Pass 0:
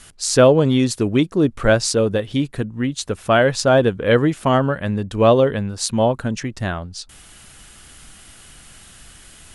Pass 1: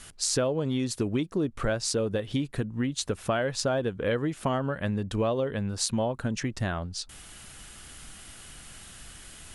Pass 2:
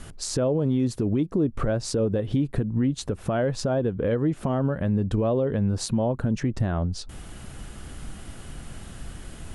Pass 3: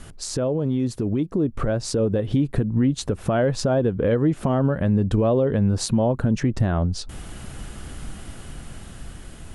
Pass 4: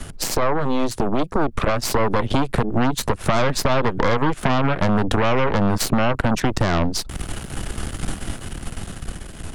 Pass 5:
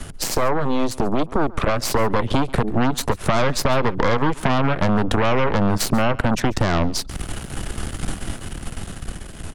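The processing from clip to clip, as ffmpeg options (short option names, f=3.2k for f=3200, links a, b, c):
-af "acompressor=threshold=-22dB:ratio=6,volume=-2.5dB"
-af "tiltshelf=f=1.1k:g=8,alimiter=limit=-19.5dB:level=0:latency=1:release=173,volume=4.5dB"
-af "dynaudnorm=f=550:g=7:m=4dB"
-filter_complex "[0:a]aeval=exprs='0.299*(cos(1*acos(clip(val(0)/0.299,-1,1)))-cos(1*PI/2))+0.106*(cos(6*acos(clip(val(0)/0.299,-1,1)))-cos(6*PI/2))':c=same,acrossover=split=170|860[a][b][c];[a]acompressor=threshold=-26dB:ratio=4[d];[b]acompressor=threshold=-29dB:ratio=4[e];[c]acompressor=threshold=-28dB:ratio=4[f];[d][e][f]amix=inputs=3:normalize=0,volume=6dB"
-af "aecho=1:1:139:0.0841"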